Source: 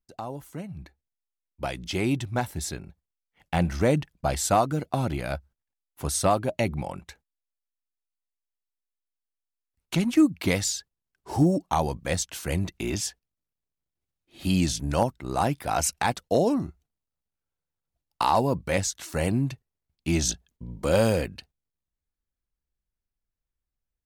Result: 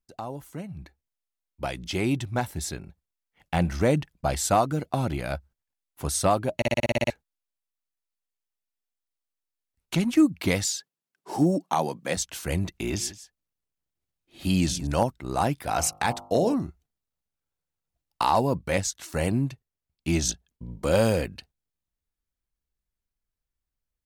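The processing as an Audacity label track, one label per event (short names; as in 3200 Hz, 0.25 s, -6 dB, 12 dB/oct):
6.560000	6.560000	stutter in place 0.06 s, 9 plays
10.650000	12.170000	HPF 160 Hz 24 dB/oct
12.760000	14.870000	echo 0.171 s -16.5 dB
15.550000	16.540000	de-hum 50.24 Hz, notches 27
18.550000	21.000000	transient shaper attack 0 dB, sustain -4 dB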